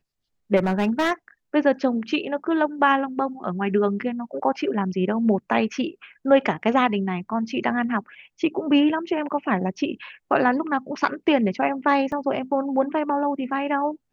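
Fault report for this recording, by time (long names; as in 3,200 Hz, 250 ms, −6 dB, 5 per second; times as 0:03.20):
0:00.56–0:01.12: clipping −17 dBFS
0:12.12: drop-out 2.6 ms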